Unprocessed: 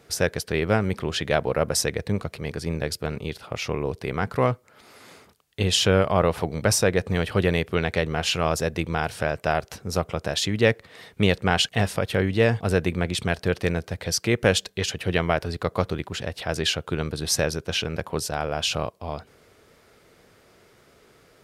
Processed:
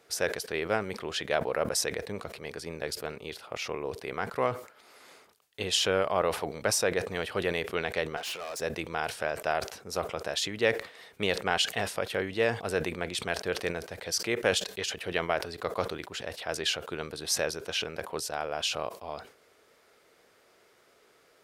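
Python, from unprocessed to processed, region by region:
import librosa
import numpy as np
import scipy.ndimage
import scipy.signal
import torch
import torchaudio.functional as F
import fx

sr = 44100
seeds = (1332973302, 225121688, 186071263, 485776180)

y = fx.chain(x, sr, fx.bessel_highpass(hz=290.0, order=2),
    fx.overload_stage(gain_db=28.5), at=(8.17, 8.6))
y = fx.bass_treble(y, sr, bass_db=-14, treble_db=0)
y = fx.sustainer(y, sr, db_per_s=130.0)
y = y * 10.0 ** (-5.0 / 20.0)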